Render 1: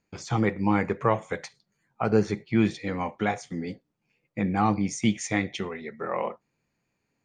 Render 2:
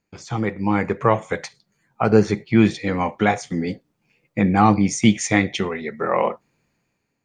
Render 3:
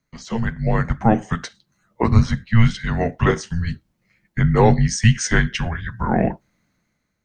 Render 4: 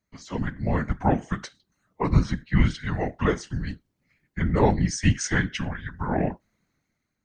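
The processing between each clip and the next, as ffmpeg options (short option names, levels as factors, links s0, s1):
-af "dynaudnorm=f=230:g=7:m=3.76"
-af "afreqshift=-340,volume=1.19"
-af "afftfilt=real='hypot(re,im)*cos(2*PI*random(0))':imag='hypot(re,im)*sin(2*PI*random(1))':win_size=512:overlap=0.75"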